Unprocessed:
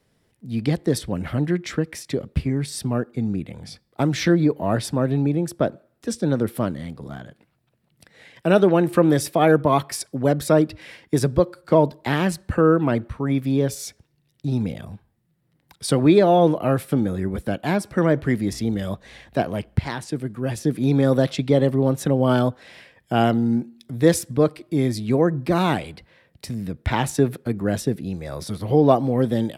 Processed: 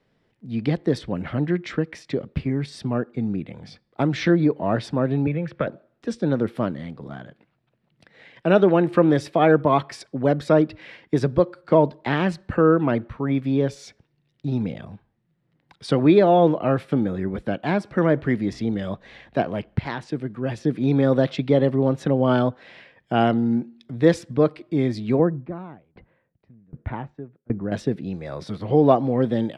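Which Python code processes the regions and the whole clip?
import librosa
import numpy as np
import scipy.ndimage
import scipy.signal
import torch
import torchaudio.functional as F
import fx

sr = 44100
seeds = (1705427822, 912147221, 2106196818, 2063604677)

y = fx.chain(x, sr, fx.curve_eq(hz=(150.0, 350.0, 520.0, 730.0, 1400.0, 2300.0, 8200.0), db=(0, -10, 2, -9, 4, 8, -24)),
    fx.band_squash(depth_pct=100), at=(5.27, 5.67))
y = fx.chain(y, sr, fx.lowpass(hz=1600.0, slope=12),
    fx.low_shelf(hz=200.0, db=6.5),
    fx.tremolo_decay(direction='decaying', hz=1.3, depth_db=32), at=(25.19, 27.72))
y = scipy.signal.sosfilt(scipy.signal.butter(2, 3600.0, 'lowpass', fs=sr, output='sos'), y)
y = fx.peak_eq(y, sr, hz=67.0, db=-8.0, octaves=1.2)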